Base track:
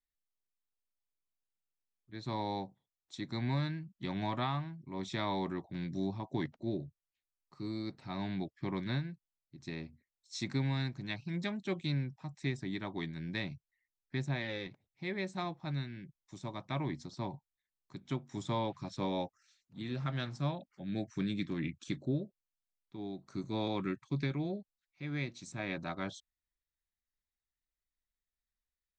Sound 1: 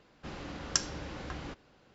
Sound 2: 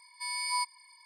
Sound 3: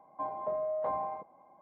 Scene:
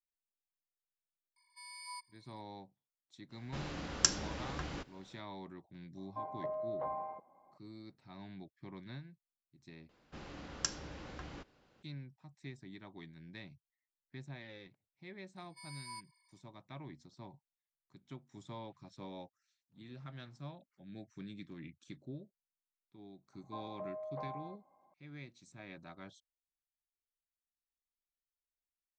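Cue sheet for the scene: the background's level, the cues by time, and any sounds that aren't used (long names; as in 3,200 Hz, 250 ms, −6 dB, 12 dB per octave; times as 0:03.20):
base track −12.5 dB
0:01.36: mix in 2 −16 dB
0:03.29: mix in 1 −1 dB, fades 0.05 s + high-shelf EQ 5,100 Hz +4.5 dB
0:05.97: mix in 3 −6 dB
0:09.89: overwrite with 1 −6.5 dB
0:15.36: mix in 2 −17 dB
0:23.33: mix in 3 −10.5 dB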